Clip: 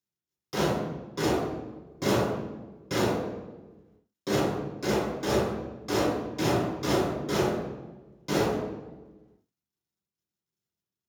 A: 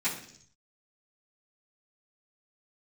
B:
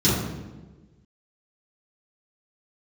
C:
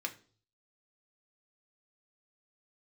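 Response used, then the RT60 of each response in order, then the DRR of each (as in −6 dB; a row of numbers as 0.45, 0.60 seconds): B; 0.60, 1.3, 0.45 seconds; −14.5, −12.0, 3.5 decibels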